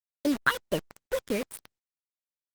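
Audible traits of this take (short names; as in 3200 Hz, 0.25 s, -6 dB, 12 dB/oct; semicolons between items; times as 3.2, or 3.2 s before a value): phasing stages 8, 1.4 Hz, lowest notch 720–2500 Hz; a quantiser's noise floor 6-bit, dither none; Opus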